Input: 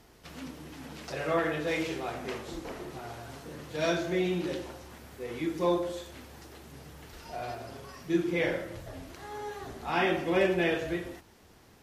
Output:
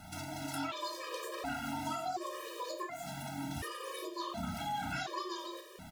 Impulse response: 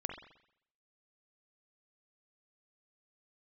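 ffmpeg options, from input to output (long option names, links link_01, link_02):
-filter_complex "[0:a]acompressor=threshold=-41dB:ratio=16,asplit=2[link_01][link_02];[link_02]adelay=22,volume=-11dB[link_03];[link_01][link_03]amix=inputs=2:normalize=0,asplit=2[link_04][link_05];[1:a]atrim=start_sample=2205,lowshelf=frequency=370:gain=11,adelay=64[link_06];[link_05][link_06]afir=irnorm=-1:irlink=0,volume=-8dB[link_07];[link_04][link_07]amix=inputs=2:normalize=0,asetrate=88200,aresample=44100,afftfilt=real='re*gt(sin(2*PI*0.69*pts/sr)*(1-2*mod(floor(b*sr/1024/320),2)),0)':imag='im*gt(sin(2*PI*0.69*pts/sr)*(1-2*mod(floor(b*sr/1024/320),2)),0)':win_size=1024:overlap=0.75,volume=7dB"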